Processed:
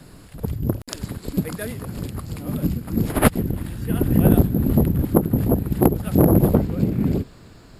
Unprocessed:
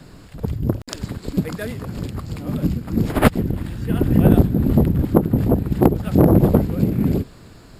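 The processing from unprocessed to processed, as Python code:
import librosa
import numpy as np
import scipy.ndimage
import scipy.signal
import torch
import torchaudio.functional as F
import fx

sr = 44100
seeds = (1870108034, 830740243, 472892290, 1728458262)

y = fx.peak_eq(x, sr, hz=11000.0, db=fx.steps((0.0, 12.5), (6.54, -3.5)), octaves=0.45)
y = y * 10.0 ** (-2.0 / 20.0)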